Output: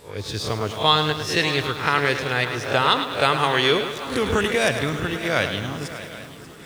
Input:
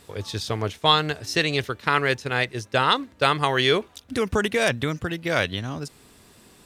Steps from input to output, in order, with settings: spectral swells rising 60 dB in 0.31 s; swung echo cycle 0.784 s, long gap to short 3:1, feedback 47%, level -15 dB; lo-fi delay 0.105 s, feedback 55%, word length 7-bit, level -9 dB

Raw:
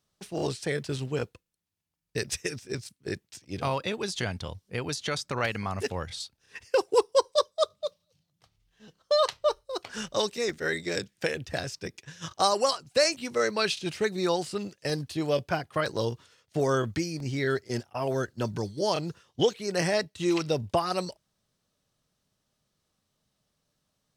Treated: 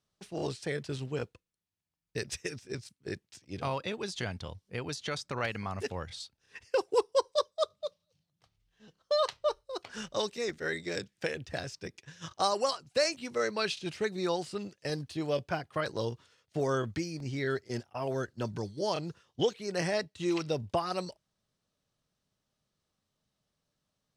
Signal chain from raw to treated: high shelf 12000 Hz -12 dB; gain -4.5 dB

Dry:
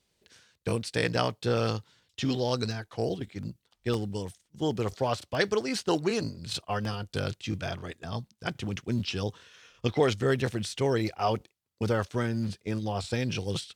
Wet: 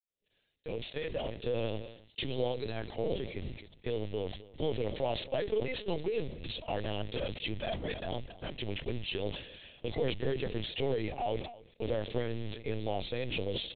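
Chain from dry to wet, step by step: opening faded in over 3.23 s; compressor 4:1, threshold -33 dBFS, peak gain reduction 12.5 dB; limiter -27 dBFS, peak gain reduction 9 dB; HPF 86 Hz 6 dB/oct; modulation noise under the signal 14 dB; vibrato 14 Hz 29 cents; fixed phaser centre 510 Hz, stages 4; echo 0.269 s -21 dB; LPC vocoder at 8 kHz pitch kept; sustainer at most 88 dB/s; gain +7 dB

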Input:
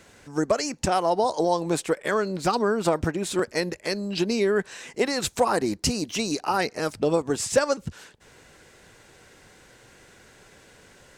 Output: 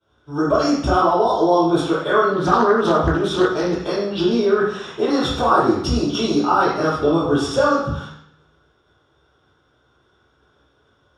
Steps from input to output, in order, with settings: expander -40 dBFS; low shelf 89 Hz +8 dB; in parallel at -2.5 dB: negative-ratio compressor -28 dBFS; on the sum: reverb RT60 0.70 s, pre-delay 3 ms, DRR -9.5 dB; 2.33–3.84 Doppler distortion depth 0.3 ms; gain -17 dB

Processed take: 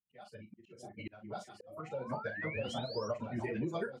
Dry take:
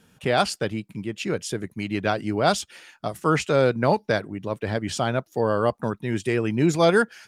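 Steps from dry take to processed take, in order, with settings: per-bin expansion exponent 2; plain phase-vocoder stretch 0.55×; AGC gain up to 7 dB; echo with dull and thin repeats by turns 0.645 s, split 800 Hz, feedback 67%, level -9.5 dB; painted sound rise, 1.6–3.08, 470–5900 Hz -33 dBFS; doubler 38 ms -10 dB; compressor 16:1, threshold -30 dBFS, peak gain reduction 17.5 dB; auto swell 0.557 s; HPF 160 Hz 6 dB/oct; high shelf 2700 Hz -11 dB; gain -1 dB

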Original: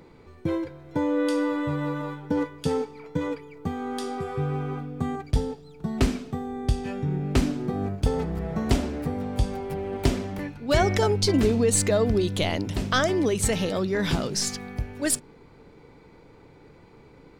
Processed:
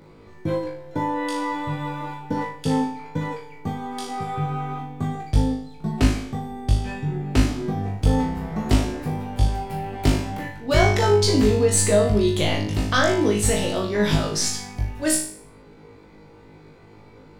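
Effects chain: flutter echo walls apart 3.3 m, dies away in 0.5 s

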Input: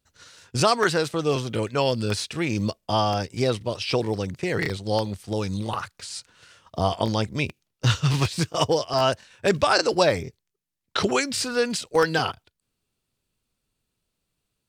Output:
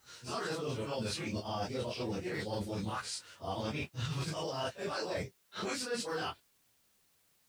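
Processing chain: phase scrambler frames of 0.2 s; HPF 96 Hz 6 dB/oct; reverse; compressor 8:1, threshold -33 dBFS, peak gain reduction 18.5 dB; reverse; time stretch by phase-locked vocoder 0.51×; requantised 12-bit, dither triangular

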